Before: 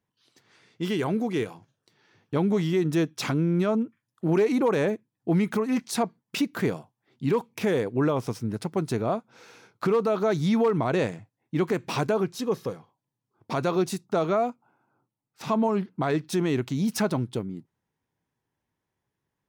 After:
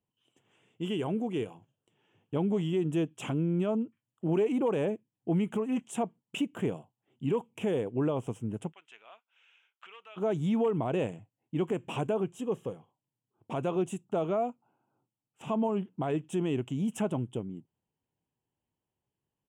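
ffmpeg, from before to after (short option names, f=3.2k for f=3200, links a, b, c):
-filter_complex "[0:a]asplit=3[a][b][c];[a]afade=t=out:st=8.71:d=0.02[d];[b]asuperpass=centerf=2700:order=4:qfactor=1,afade=t=in:st=8.71:d=0.02,afade=t=out:st=10.16:d=0.02[e];[c]afade=t=in:st=10.16:d=0.02[f];[d][e][f]amix=inputs=3:normalize=0,firequalizer=gain_entry='entry(780,0);entry(1300,-7);entry(2000,-9);entry(3000,5);entry(4300,-29);entry(7400,1);entry(14000,-16)':delay=0.05:min_phase=1,volume=-5dB"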